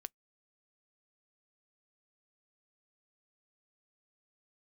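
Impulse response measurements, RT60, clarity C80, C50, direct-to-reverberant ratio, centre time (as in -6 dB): 0.10 s, 60.0 dB, 48.0 dB, 17.5 dB, 1 ms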